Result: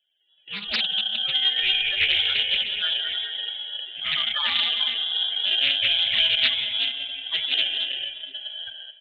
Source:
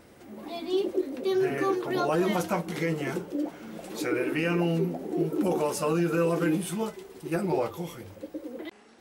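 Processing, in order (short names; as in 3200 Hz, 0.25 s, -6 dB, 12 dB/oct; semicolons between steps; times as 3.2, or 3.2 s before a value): HPF 160 Hz 24 dB/oct; bell 260 Hz -11 dB 1.1 oct; non-linear reverb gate 0.47 s flat, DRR 1 dB; dynamic EQ 1500 Hz, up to +4 dB, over -50 dBFS, Q 2.6; loudest bins only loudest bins 16; in parallel at -4 dB: sample-and-hold 18×; on the sum: gate with hold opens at -32 dBFS; on a send: feedback echo 0.431 s, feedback 26%, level -16 dB; on the sum: inverted band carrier 3600 Hz; Doppler distortion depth 0.45 ms; gain +3 dB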